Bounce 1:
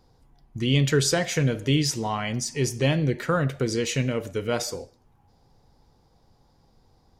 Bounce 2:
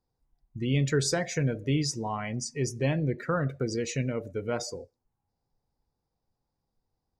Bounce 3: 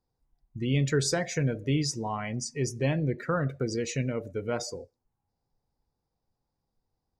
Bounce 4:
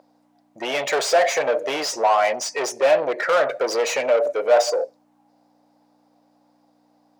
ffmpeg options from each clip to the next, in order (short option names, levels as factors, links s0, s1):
-af "afftdn=nr=17:nf=-36,equalizer=f=3100:w=5.9:g=-11,volume=0.596"
-af anull
-filter_complex "[0:a]aeval=exprs='val(0)+0.00282*(sin(2*PI*60*n/s)+sin(2*PI*2*60*n/s)/2+sin(2*PI*3*60*n/s)/3+sin(2*PI*4*60*n/s)/4+sin(2*PI*5*60*n/s)/5)':c=same,asplit=2[s0][s1];[s1]highpass=f=720:p=1,volume=22.4,asoftclip=type=tanh:threshold=0.188[s2];[s0][s2]amix=inputs=2:normalize=0,lowpass=f=3700:p=1,volume=0.501,highpass=f=610:t=q:w=3.8"